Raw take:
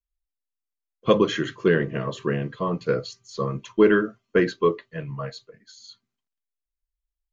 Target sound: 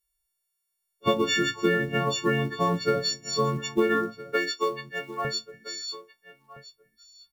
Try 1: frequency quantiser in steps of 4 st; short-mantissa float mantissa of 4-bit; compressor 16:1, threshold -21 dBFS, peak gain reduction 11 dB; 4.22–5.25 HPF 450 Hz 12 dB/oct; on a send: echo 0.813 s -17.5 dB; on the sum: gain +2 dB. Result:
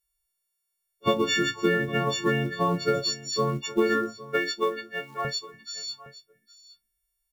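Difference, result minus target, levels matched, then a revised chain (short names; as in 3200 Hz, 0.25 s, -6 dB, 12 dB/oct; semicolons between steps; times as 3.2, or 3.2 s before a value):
echo 0.503 s early
frequency quantiser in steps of 4 st; short-mantissa float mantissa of 4-bit; compressor 16:1, threshold -21 dBFS, peak gain reduction 11 dB; 4.22–5.25 HPF 450 Hz 12 dB/oct; on a send: echo 1.316 s -17.5 dB; on the sum: gain +2 dB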